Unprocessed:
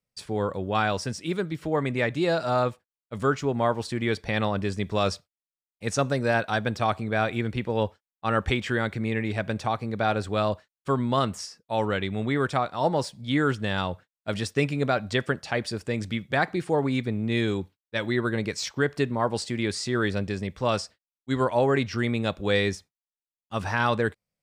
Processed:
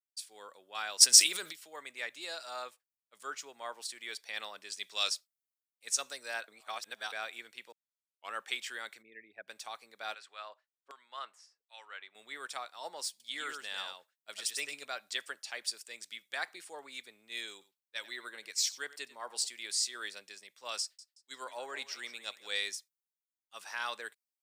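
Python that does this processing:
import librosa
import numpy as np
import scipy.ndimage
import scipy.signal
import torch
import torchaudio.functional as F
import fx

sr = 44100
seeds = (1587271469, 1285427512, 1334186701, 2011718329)

y = fx.env_flatten(x, sr, amount_pct=100, at=(1.0, 1.51), fade=0.02)
y = fx.peak_eq(y, sr, hz=3800.0, db=6.5, octaves=1.9, at=(4.7, 5.1))
y = fx.envelope_sharpen(y, sr, power=2.0, at=(9.01, 9.47), fade=0.02)
y = fx.filter_lfo_bandpass(y, sr, shape='saw_down', hz=1.3, low_hz=420.0, high_hz=2700.0, q=0.89, at=(10.14, 12.15))
y = fx.echo_single(y, sr, ms=98, db=-4.5, at=(13.1, 14.85))
y = fx.echo_single(y, sr, ms=93, db=-16.0, at=(17.52, 19.49))
y = fx.echo_thinned(y, sr, ms=176, feedback_pct=44, hz=420.0, wet_db=-13.5, at=(20.81, 22.57))
y = fx.edit(y, sr, fx.reverse_span(start_s=6.48, length_s=0.64),
    fx.tape_start(start_s=7.72, length_s=0.62), tone=tone)
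y = scipy.signal.sosfilt(scipy.signal.butter(2, 340.0, 'highpass', fs=sr, output='sos'), y)
y = np.diff(y, prepend=0.0)
y = fx.band_widen(y, sr, depth_pct=40)
y = y * librosa.db_to_amplitude(1.0)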